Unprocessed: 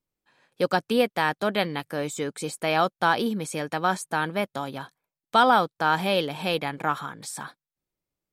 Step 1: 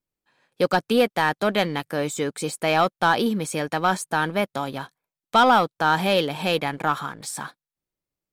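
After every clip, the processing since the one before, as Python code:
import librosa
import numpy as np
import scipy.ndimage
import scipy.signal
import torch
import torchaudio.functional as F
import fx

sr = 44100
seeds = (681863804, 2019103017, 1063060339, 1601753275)

y = fx.leveller(x, sr, passes=1)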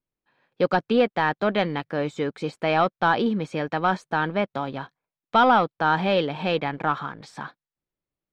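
y = fx.air_absorb(x, sr, metres=220.0)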